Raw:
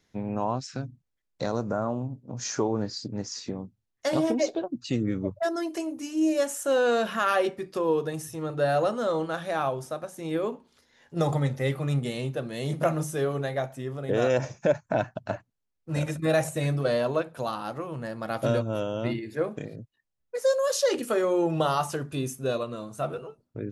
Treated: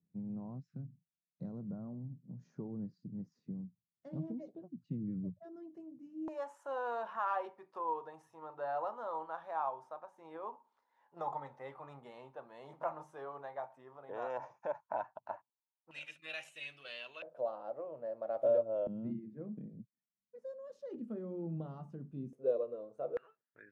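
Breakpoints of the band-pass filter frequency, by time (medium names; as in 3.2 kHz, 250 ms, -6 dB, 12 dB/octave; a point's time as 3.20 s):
band-pass filter, Q 5.9
170 Hz
from 6.28 s 930 Hz
from 15.91 s 2.8 kHz
from 17.22 s 590 Hz
from 18.87 s 200 Hz
from 22.33 s 490 Hz
from 23.17 s 1.7 kHz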